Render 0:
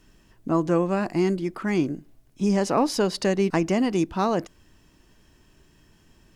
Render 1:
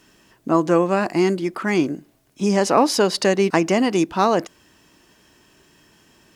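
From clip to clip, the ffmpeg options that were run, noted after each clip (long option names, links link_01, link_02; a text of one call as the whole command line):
ffmpeg -i in.wav -af "highpass=frequency=330:poles=1,volume=7.5dB" out.wav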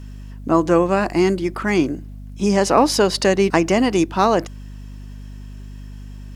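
ffmpeg -i in.wav -af "aeval=exprs='val(0)+0.0178*(sin(2*PI*50*n/s)+sin(2*PI*2*50*n/s)/2+sin(2*PI*3*50*n/s)/3+sin(2*PI*4*50*n/s)/4+sin(2*PI*5*50*n/s)/5)':channel_layout=same,volume=1.5dB" out.wav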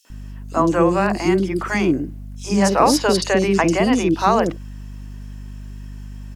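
ffmpeg -i in.wav -filter_complex "[0:a]acrossover=split=450|3700[link_01][link_02][link_03];[link_02]adelay=50[link_04];[link_01]adelay=100[link_05];[link_05][link_04][link_03]amix=inputs=3:normalize=0,volume=1.5dB" out.wav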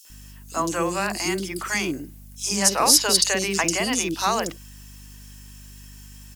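ffmpeg -i in.wav -af "crystalizer=i=9.5:c=0,volume=-11dB" out.wav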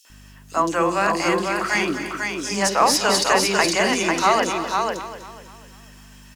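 ffmpeg -i in.wav -filter_complex "[0:a]asplit=2[link_01][link_02];[link_02]aecho=0:1:266|327|496:0.119|0.126|0.596[link_03];[link_01][link_03]amix=inputs=2:normalize=0,asplit=2[link_04][link_05];[link_05]highpass=frequency=720:poles=1,volume=10dB,asoftclip=type=tanh:threshold=-1.5dB[link_06];[link_04][link_06]amix=inputs=2:normalize=0,lowpass=frequency=1400:poles=1,volume=-6dB,asplit=2[link_07][link_08];[link_08]aecho=0:1:247|494|741|988|1235:0.251|0.113|0.0509|0.0229|0.0103[link_09];[link_07][link_09]amix=inputs=2:normalize=0,volume=3dB" out.wav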